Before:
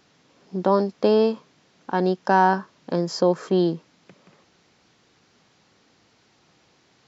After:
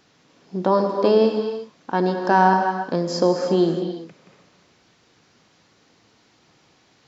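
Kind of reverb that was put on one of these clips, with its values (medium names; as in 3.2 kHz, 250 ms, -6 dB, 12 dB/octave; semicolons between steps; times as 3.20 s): gated-style reverb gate 370 ms flat, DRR 4.5 dB; trim +1 dB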